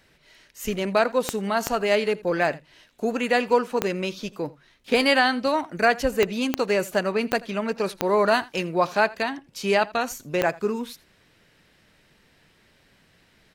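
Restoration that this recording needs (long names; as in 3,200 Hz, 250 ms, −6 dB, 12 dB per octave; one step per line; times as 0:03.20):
click removal
echo removal 83 ms −21.5 dB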